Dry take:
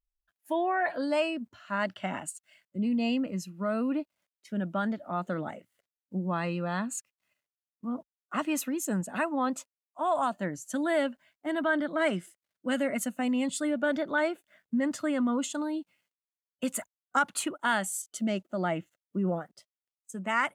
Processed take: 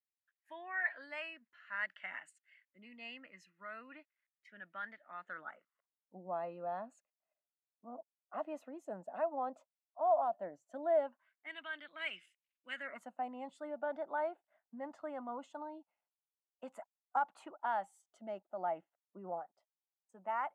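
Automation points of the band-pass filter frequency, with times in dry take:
band-pass filter, Q 4.3
5.19 s 1.9 kHz
6.28 s 680 Hz
10.99 s 680 Hz
11.55 s 2.6 kHz
12.67 s 2.6 kHz
13.08 s 800 Hz

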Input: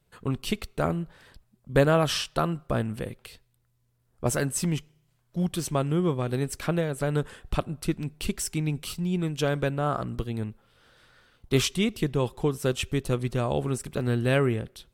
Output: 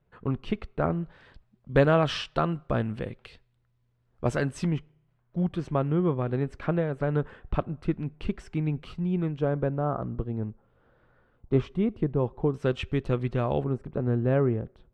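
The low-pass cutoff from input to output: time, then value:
1.8 kHz
from 1.03 s 3.3 kHz
from 4.67 s 1.8 kHz
from 9.39 s 1 kHz
from 12.54 s 2.5 kHz
from 13.64 s 1 kHz

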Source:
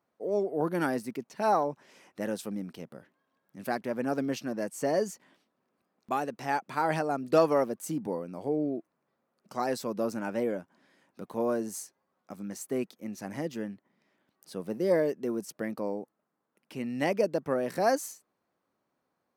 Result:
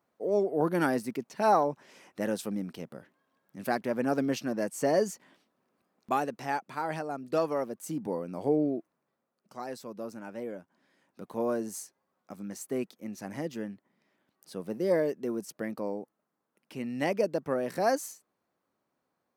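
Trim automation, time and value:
6.17 s +2 dB
6.86 s -5.5 dB
7.58 s -5.5 dB
8.49 s +4 dB
9.60 s -8.5 dB
10.37 s -8.5 dB
11.36 s -1 dB

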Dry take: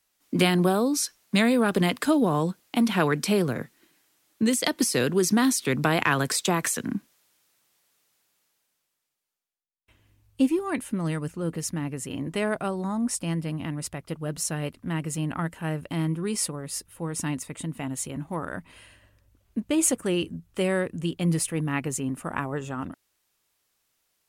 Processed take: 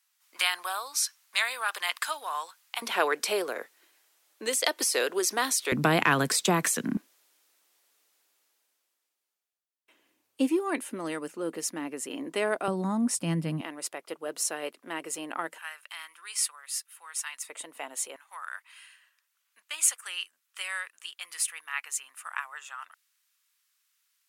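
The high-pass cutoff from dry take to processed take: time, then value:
high-pass 24 dB/octave
940 Hz
from 2.82 s 440 Hz
from 5.72 s 140 Hz
from 6.97 s 290 Hz
from 12.68 s 130 Hz
from 13.61 s 370 Hz
from 15.58 s 1.2 kHz
from 17.49 s 490 Hz
from 18.16 s 1.2 kHz

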